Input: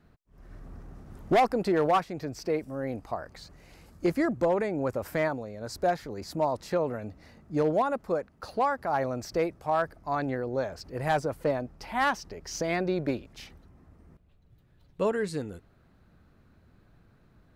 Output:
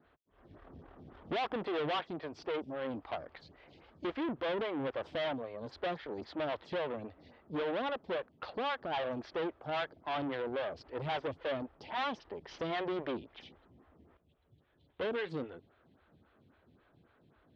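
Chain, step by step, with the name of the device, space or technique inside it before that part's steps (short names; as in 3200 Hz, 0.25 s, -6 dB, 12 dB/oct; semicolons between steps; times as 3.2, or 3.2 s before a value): vibe pedal into a guitar amplifier (photocell phaser 3.7 Hz; tube stage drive 36 dB, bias 0.65; speaker cabinet 82–3900 Hz, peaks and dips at 120 Hz -4 dB, 190 Hz -6 dB, 3300 Hz +8 dB); gain +4 dB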